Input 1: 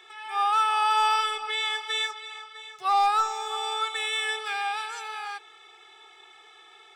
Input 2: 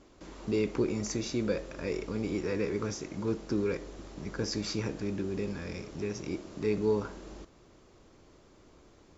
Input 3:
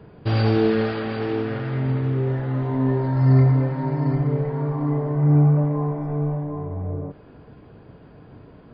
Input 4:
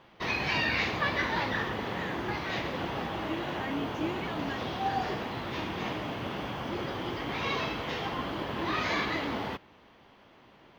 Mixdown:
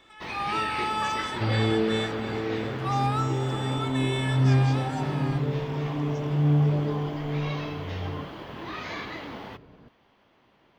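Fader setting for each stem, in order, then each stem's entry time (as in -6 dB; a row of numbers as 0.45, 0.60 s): -6.5, -9.0, -5.5, -5.5 dB; 0.00, 0.00, 1.15, 0.00 s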